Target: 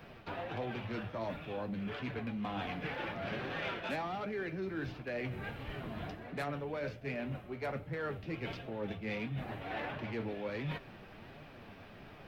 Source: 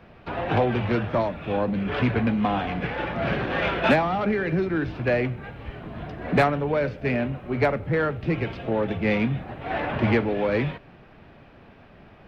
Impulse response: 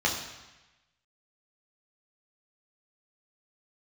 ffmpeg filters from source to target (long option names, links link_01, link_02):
-af "flanger=delay=6.3:depth=4.5:regen=59:speed=1.4:shape=triangular,areverse,acompressor=threshold=-38dB:ratio=6,areverse,bandreject=frequency=60:width_type=h:width=6,bandreject=frequency=120:width_type=h:width=6,crystalizer=i=2.5:c=0,volume=1dB"